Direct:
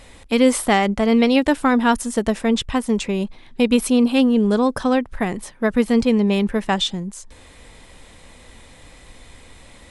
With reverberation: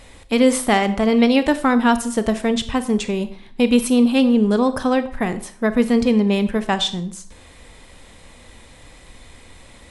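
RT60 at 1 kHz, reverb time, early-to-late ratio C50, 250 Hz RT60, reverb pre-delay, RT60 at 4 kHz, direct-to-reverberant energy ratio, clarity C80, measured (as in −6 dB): 0.55 s, 0.50 s, 14.0 dB, 0.50 s, 26 ms, 0.45 s, 11.5 dB, 17.0 dB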